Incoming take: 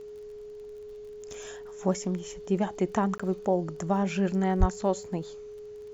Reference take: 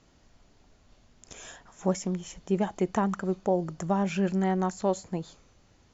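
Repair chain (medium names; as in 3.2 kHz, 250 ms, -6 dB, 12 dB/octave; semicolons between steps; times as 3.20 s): de-click; band-stop 420 Hz, Q 30; de-plosive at 4.59 s; interpolate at 3.18 s, 15 ms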